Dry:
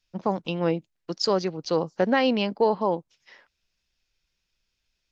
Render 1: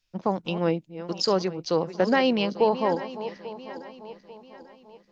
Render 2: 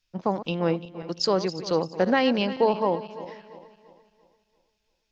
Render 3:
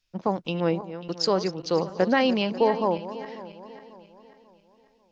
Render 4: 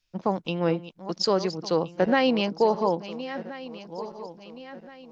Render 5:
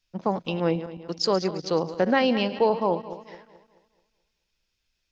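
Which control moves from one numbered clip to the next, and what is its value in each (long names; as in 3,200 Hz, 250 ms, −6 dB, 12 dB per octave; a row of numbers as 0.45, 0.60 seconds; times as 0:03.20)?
feedback delay that plays each chunk backwards, delay time: 421, 171, 271, 687, 108 milliseconds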